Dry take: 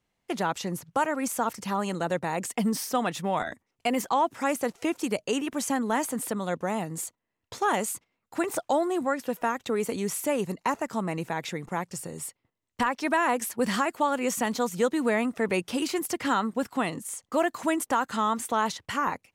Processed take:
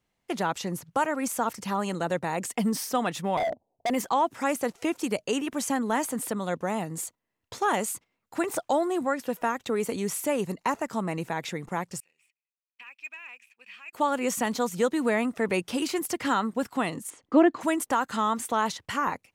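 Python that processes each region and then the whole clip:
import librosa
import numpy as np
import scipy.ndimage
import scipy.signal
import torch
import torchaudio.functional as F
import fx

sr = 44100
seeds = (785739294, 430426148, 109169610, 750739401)

y = fx.chain(x, sr, fx.steep_lowpass(hz=890.0, slope=48),
    fx.peak_eq(hz=660.0, db=15.0, octaves=0.71),
    fx.overload_stage(gain_db=24.5), at=(3.37, 3.9))
y = fx.chain(y, sr, fx.bandpass_q(hz=2500.0, q=20.0),
    fx.leveller(passes=1), at=(12.0, 13.93))
y = fx.chain(y, sr, fx.lowpass(hz=3400.0, slope=12),
    fx.peak_eq(hz=310.0, db=12.0, octaves=0.79), at=(17.1, 17.61))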